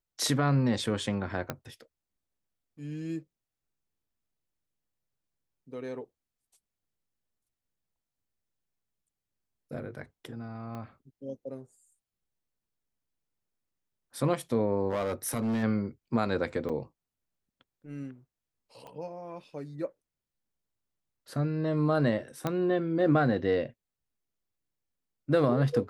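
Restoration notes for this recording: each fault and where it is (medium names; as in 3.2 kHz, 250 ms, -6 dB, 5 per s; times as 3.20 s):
1.50 s: pop -17 dBFS
10.75 s: pop -28 dBFS
14.90–15.64 s: clipped -26 dBFS
16.69–16.70 s: dropout 6.5 ms
18.87 s: pop -33 dBFS
22.47 s: pop -16 dBFS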